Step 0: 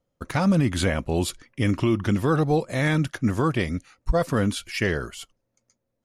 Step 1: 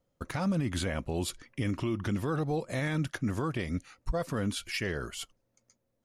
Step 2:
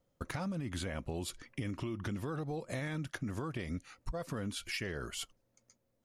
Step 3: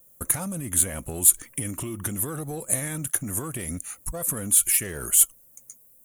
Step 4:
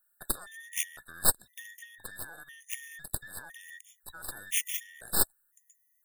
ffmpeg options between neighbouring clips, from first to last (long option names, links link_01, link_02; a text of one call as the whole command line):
ffmpeg -i in.wav -af "alimiter=limit=-22.5dB:level=0:latency=1:release=298" out.wav
ffmpeg -i in.wav -af "acompressor=threshold=-35dB:ratio=6" out.wav
ffmpeg -i in.wav -filter_complex "[0:a]asplit=2[link_01][link_02];[link_02]asoftclip=type=tanh:threshold=-37dB,volume=-3.5dB[link_03];[link_01][link_03]amix=inputs=2:normalize=0,aexciter=amount=12.5:drive=9.5:freq=7600,volume=2dB" out.wav
ffmpeg -i in.wav -af "afftfilt=real='real(if(between(b,1,1012),(2*floor((b-1)/92)+1)*92-b,b),0)':imag='imag(if(between(b,1,1012),(2*floor((b-1)/92)+1)*92-b,b),0)*if(between(b,1,1012),-1,1)':win_size=2048:overlap=0.75,aeval=exprs='0.891*(cos(1*acos(clip(val(0)/0.891,-1,1)))-cos(1*PI/2))+0.251*(cos(4*acos(clip(val(0)/0.891,-1,1)))-cos(4*PI/2))+0.0708*(cos(7*acos(clip(val(0)/0.891,-1,1)))-cos(7*PI/2))+0.0355*(cos(8*acos(clip(val(0)/0.891,-1,1)))-cos(8*PI/2))':channel_layout=same,afftfilt=real='re*gt(sin(2*PI*0.99*pts/sr)*(1-2*mod(floor(b*sr/1024/1800),2)),0)':imag='im*gt(sin(2*PI*0.99*pts/sr)*(1-2*mod(floor(b*sr/1024/1800),2)),0)':win_size=1024:overlap=0.75,volume=-6.5dB" out.wav